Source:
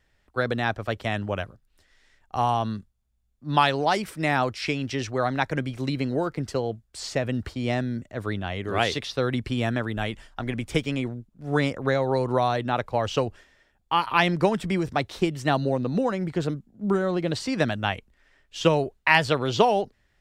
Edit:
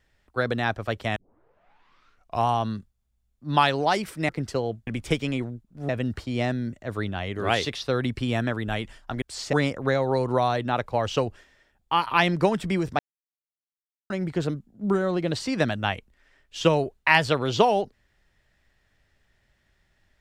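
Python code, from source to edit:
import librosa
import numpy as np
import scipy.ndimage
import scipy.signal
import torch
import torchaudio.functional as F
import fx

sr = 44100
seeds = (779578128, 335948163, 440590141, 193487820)

y = fx.edit(x, sr, fx.tape_start(start_s=1.16, length_s=1.31),
    fx.cut(start_s=4.29, length_s=2.0),
    fx.swap(start_s=6.87, length_s=0.31, other_s=10.51, other_length_s=1.02),
    fx.silence(start_s=14.99, length_s=1.11), tone=tone)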